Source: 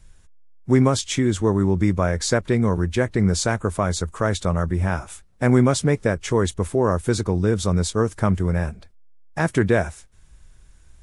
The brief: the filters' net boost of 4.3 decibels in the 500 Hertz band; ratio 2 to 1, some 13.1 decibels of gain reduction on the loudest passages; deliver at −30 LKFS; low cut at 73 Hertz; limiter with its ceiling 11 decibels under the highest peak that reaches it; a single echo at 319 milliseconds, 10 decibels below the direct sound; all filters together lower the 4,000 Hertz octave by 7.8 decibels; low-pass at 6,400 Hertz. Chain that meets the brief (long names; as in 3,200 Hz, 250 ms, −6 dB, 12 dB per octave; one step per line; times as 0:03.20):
high-pass filter 73 Hz
low-pass filter 6,400 Hz
parametric band 500 Hz +5.5 dB
parametric band 4,000 Hz −9 dB
downward compressor 2 to 1, threshold −35 dBFS
brickwall limiter −24.5 dBFS
single-tap delay 319 ms −10 dB
level +6 dB